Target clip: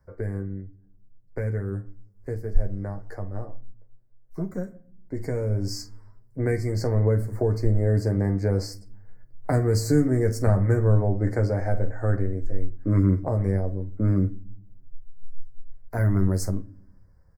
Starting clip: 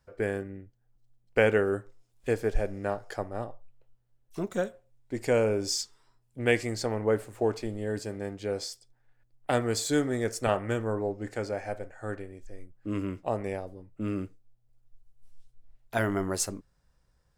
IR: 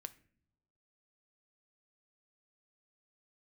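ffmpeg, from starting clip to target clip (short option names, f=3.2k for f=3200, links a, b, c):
-filter_complex "[0:a]equalizer=f=7.4k:t=o:w=1.4:g=-10,aecho=1:1:11|47:0.596|0.178,acrossover=split=210|3000[a][b][c];[b]acompressor=threshold=-35dB:ratio=6[d];[a][d][c]amix=inputs=3:normalize=0,asuperstop=centerf=3100:order=8:qfactor=1.3,lowshelf=f=400:g=9.5,asplit=2[e][f];[1:a]atrim=start_sample=2205[g];[f][g]afir=irnorm=-1:irlink=0,volume=9.5dB[h];[e][h]amix=inputs=2:normalize=0,dynaudnorm=f=230:g=31:m=11.5dB,volume=-6.5dB"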